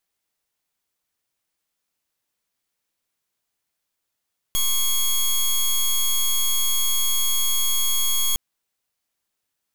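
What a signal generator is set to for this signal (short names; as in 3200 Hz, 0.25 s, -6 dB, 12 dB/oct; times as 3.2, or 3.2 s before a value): pulse 3310 Hz, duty 13% -20 dBFS 3.81 s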